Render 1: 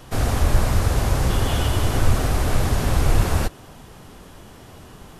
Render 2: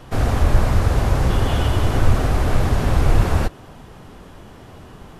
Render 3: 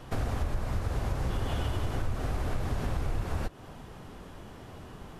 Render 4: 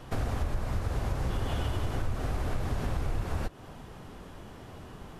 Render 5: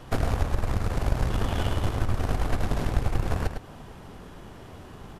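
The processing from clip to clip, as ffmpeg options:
ffmpeg -i in.wav -af "highshelf=frequency=4300:gain=-10,volume=2.5dB" out.wav
ffmpeg -i in.wav -af "acompressor=threshold=-23dB:ratio=4,volume=-5dB" out.wav
ffmpeg -i in.wav -af anull out.wav
ffmpeg -i in.wav -filter_complex "[0:a]aeval=exprs='0.126*(cos(1*acos(clip(val(0)/0.126,-1,1)))-cos(1*PI/2))+0.0562*(cos(2*acos(clip(val(0)/0.126,-1,1)))-cos(2*PI/2))+0.00447*(cos(7*acos(clip(val(0)/0.126,-1,1)))-cos(7*PI/2))':channel_layout=same,asplit=2[link_01][link_02];[link_02]adelay=105,volume=-6dB,highshelf=frequency=4000:gain=-2.36[link_03];[link_01][link_03]amix=inputs=2:normalize=0,volume=3.5dB" out.wav

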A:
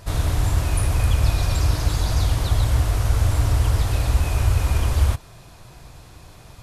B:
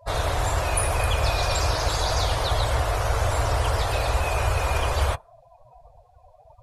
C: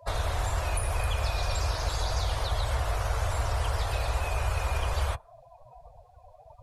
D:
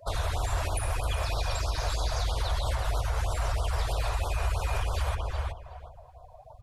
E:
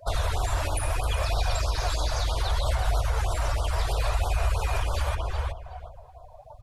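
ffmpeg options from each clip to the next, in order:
ffmpeg -i in.wav -af "lowshelf=frequency=370:width_type=q:width=1.5:gain=-11.5,afftdn=noise_reduction=33:noise_floor=-40,volume=5.5dB" out.wav
ffmpeg -i in.wav -filter_complex "[0:a]acrossover=split=98|600[link_01][link_02][link_03];[link_01]acompressor=threshold=-26dB:ratio=4[link_04];[link_02]acompressor=threshold=-42dB:ratio=4[link_05];[link_03]acompressor=threshold=-34dB:ratio=4[link_06];[link_04][link_05][link_06]amix=inputs=3:normalize=0" out.wav
ffmpeg -i in.wav -filter_complex "[0:a]asplit=2[link_01][link_02];[link_02]adelay=370,lowpass=frequency=3000:poles=1,volume=-5.5dB,asplit=2[link_03][link_04];[link_04]adelay=370,lowpass=frequency=3000:poles=1,volume=0.21,asplit=2[link_05][link_06];[link_06]adelay=370,lowpass=frequency=3000:poles=1,volume=0.21[link_07];[link_01][link_03][link_05][link_07]amix=inputs=4:normalize=0,alimiter=limit=-21.5dB:level=0:latency=1:release=106,afftfilt=real='re*(1-between(b*sr/1024,200*pow(2200/200,0.5+0.5*sin(2*PI*3.1*pts/sr))/1.41,200*pow(2200/200,0.5+0.5*sin(2*PI*3.1*pts/sr))*1.41))':imag='im*(1-between(b*sr/1024,200*pow(2200/200,0.5+0.5*sin(2*PI*3.1*pts/sr))/1.41,200*pow(2200/200,0.5+0.5*sin(2*PI*3.1*pts/sr))*1.41))':win_size=1024:overlap=0.75,volume=2dB" out.wav
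ffmpeg -i in.wav -af "flanger=delay=1.3:depth=2.2:regen=68:speed=0.7:shape=sinusoidal,volume=7dB" out.wav

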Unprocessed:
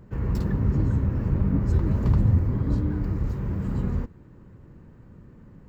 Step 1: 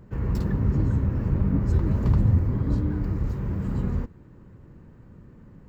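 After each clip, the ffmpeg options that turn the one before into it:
ffmpeg -i in.wav -af anull out.wav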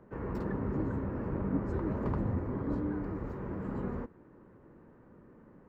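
ffmpeg -i in.wav -filter_complex "[0:a]acrossover=split=250 2000:gain=0.158 1 0.141[link_01][link_02][link_03];[link_01][link_02][link_03]amix=inputs=3:normalize=0" out.wav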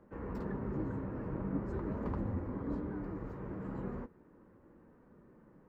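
ffmpeg -i in.wav -af "flanger=delay=3.6:depth=3:regen=-63:speed=0.43:shape=sinusoidal" out.wav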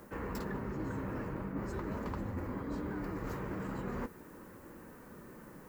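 ffmpeg -i in.wav -af "areverse,acompressor=threshold=-44dB:ratio=6,areverse,crystalizer=i=9:c=0,volume=7.5dB" out.wav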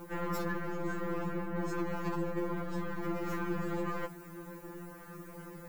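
ffmpeg -i in.wav -af "aeval=exprs='0.0473*(cos(1*acos(clip(val(0)/0.0473,-1,1)))-cos(1*PI/2))+0.00237*(cos(8*acos(clip(val(0)/0.0473,-1,1)))-cos(8*PI/2))':channel_layout=same,afftfilt=real='re*2.83*eq(mod(b,8),0)':imag='im*2.83*eq(mod(b,8),0)':win_size=2048:overlap=0.75,volume=7dB" out.wav

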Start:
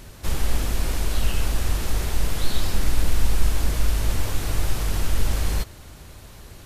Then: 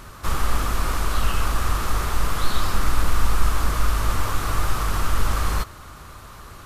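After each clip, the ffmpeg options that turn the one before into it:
ffmpeg -i in.wav -af "equalizer=frequency=1200:width_type=o:width=0.67:gain=15" out.wav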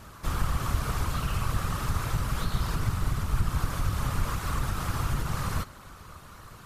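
ffmpeg -i in.wav -af "acompressor=threshold=-15dB:ratio=6,afftfilt=real='hypot(re,im)*cos(2*PI*random(0))':imag='hypot(re,im)*sin(2*PI*random(1))':win_size=512:overlap=0.75" out.wav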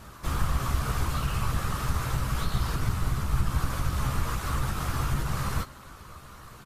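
ffmpeg -i in.wav -filter_complex "[0:a]asplit=2[link_01][link_02];[link_02]adelay=15,volume=-7dB[link_03];[link_01][link_03]amix=inputs=2:normalize=0" out.wav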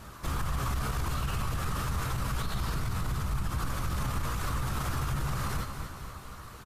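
ffmpeg -i in.wav -af "aecho=1:1:236|472|708|944|1180|1416:0.266|0.152|0.0864|0.0493|0.0281|0.016,alimiter=limit=-23dB:level=0:latency=1:release=31" out.wav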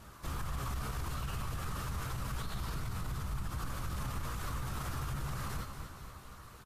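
ffmpeg -i in.wav -af "volume=-6.5dB" -ar 44100 -c:a libvorbis -b:a 64k out.ogg

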